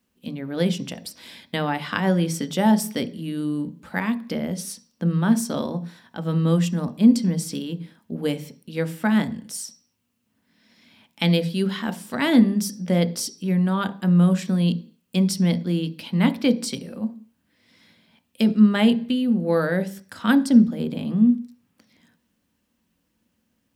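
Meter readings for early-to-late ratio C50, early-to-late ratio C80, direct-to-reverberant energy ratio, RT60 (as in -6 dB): 17.0 dB, 22.0 dB, 9.5 dB, 0.45 s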